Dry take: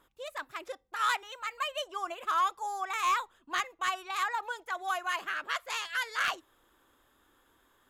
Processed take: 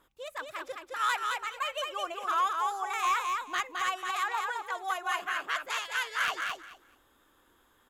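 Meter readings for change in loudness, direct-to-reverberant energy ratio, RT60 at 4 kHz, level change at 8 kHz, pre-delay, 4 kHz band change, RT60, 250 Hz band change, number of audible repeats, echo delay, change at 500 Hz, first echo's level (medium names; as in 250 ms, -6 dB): +1.5 dB, no reverb, no reverb, +1.5 dB, no reverb, +1.0 dB, no reverb, +1.5 dB, 3, 215 ms, +1.5 dB, -4.0 dB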